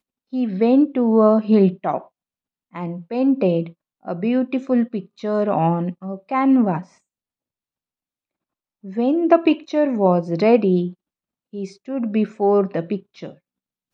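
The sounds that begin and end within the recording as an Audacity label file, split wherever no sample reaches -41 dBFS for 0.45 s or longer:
2.740000	6.850000	sound
8.840000	10.930000	sound
11.530000	13.340000	sound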